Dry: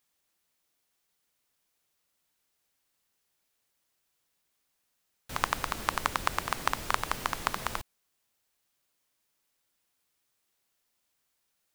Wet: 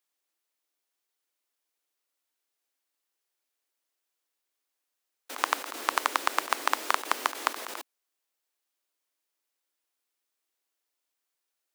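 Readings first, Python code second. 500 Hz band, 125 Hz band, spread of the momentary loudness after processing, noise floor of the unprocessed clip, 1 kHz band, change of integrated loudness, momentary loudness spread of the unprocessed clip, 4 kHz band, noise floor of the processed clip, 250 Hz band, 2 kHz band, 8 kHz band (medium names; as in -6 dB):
+2.5 dB, under -30 dB, 11 LU, -78 dBFS, +2.5 dB, +2.5 dB, 6 LU, +2.5 dB, -84 dBFS, -1.5 dB, +2.5 dB, +2.5 dB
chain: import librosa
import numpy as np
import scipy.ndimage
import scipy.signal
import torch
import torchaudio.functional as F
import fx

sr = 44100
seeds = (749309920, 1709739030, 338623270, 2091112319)

y = scipy.signal.sosfilt(scipy.signal.butter(8, 270.0, 'highpass', fs=sr, output='sos'), x)
y = fx.level_steps(y, sr, step_db=15)
y = F.gain(torch.from_numpy(y), 6.0).numpy()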